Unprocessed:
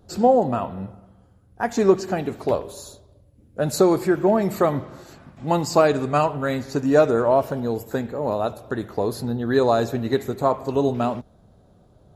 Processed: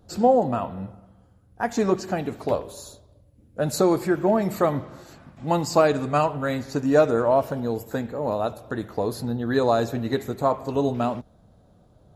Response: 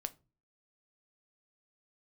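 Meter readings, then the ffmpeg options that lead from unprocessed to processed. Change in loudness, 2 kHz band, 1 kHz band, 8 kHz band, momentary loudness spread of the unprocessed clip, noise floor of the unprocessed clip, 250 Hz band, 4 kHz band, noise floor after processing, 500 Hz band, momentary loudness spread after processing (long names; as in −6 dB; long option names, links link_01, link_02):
−2.0 dB, −1.5 dB, −1.5 dB, −1.5 dB, 13 LU, −55 dBFS, −2.0 dB, −1.5 dB, −57 dBFS, −2.5 dB, 13 LU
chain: -af "bandreject=frequency=390:width=12,volume=-1.5dB"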